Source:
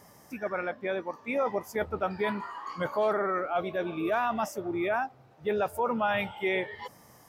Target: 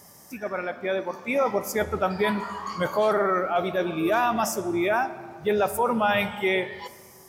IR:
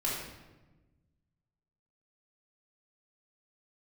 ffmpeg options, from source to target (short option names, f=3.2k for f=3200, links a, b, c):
-filter_complex "[0:a]bass=f=250:g=1,treble=f=4k:g=9,asplit=2[a][b];[1:a]atrim=start_sample=2205,asetrate=23814,aresample=44100[c];[b][c]afir=irnorm=-1:irlink=0,volume=-21.5dB[d];[a][d]amix=inputs=2:normalize=0,dynaudnorm=f=140:g=13:m=4dB"